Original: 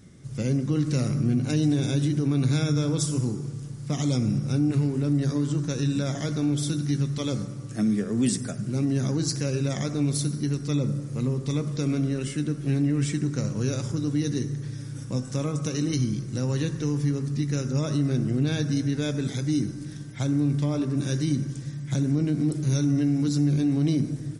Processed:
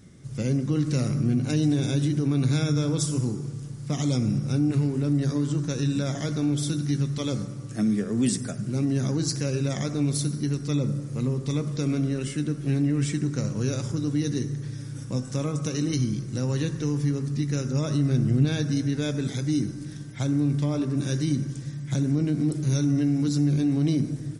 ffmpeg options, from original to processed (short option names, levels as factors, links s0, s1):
-filter_complex "[0:a]asettb=1/sr,asplit=3[s0][s1][s2];[s0]atrim=end=17.814[s3];[s1]atrim=start=17.81:end=18.45,asetpts=PTS-STARTPTS,afade=t=in:d=0.004:c=qsin,afade=t=out:st=0.636:d=0.004:c=qsin,asubboost=boost=7:cutoff=230[s4];[s2]atrim=start=18.446[s5];[s3][s4]acrossfade=d=0.004:c1=hsin:c2=qsin[s6];[s6][s5]acrossfade=d=0.004:c1=qsin:c2=hsin"